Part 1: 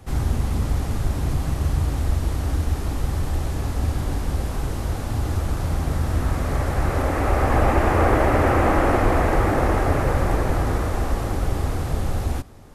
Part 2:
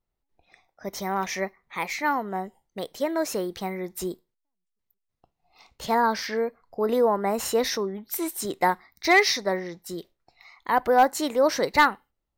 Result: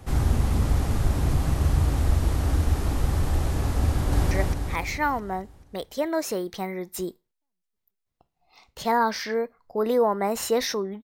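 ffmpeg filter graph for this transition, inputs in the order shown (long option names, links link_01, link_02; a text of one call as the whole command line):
ffmpeg -i cue0.wav -i cue1.wav -filter_complex "[0:a]apad=whole_dur=11.03,atrim=end=11.03,atrim=end=4.312[link_01];[1:a]atrim=start=1.338:end=8.06[link_02];[link_01][link_02]acrossfade=duration=0.004:curve1=hsin:curve2=hsin,asplit=2[link_03][link_04];[link_04]afade=type=in:start_time=3.9:duration=0.01,afade=type=out:start_time=4.31:duration=0.01,aecho=0:1:220|440|660|880|1100|1320|1540|1760:0.891251|0.490188|0.269603|0.148282|0.081555|0.0448553|0.0246704|0.0135687[link_05];[link_03][link_05]amix=inputs=2:normalize=0" out.wav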